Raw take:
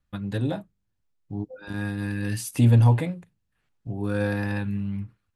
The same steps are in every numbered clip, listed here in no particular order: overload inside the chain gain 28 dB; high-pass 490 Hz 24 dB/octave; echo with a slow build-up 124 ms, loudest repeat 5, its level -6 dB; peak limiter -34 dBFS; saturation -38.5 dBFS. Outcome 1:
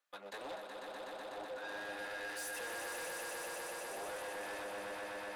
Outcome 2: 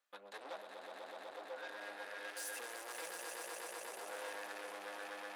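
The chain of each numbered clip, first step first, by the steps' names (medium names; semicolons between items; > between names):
overload inside the chain > high-pass > peak limiter > echo with a slow build-up > saturation; overload inside the chain > peak limiter > echo with a slow build-up > saturation > high-pass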